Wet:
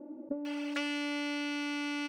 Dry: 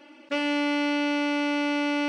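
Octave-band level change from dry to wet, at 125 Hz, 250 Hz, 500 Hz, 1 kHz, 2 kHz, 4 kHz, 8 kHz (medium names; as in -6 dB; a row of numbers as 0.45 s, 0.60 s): no reading, -9.5 dB, -13.0 dB, -12.5 dB, -8.5 dB, -7.0 dB, -3.5 dB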